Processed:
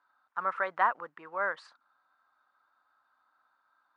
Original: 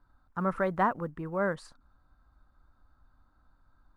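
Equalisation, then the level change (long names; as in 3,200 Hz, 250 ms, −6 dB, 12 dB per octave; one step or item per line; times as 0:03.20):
high-pass filter 1,000 Hz 12 dB per octave
low-pass filter 3,500 Hz 12 dB per octave
+4.5 dB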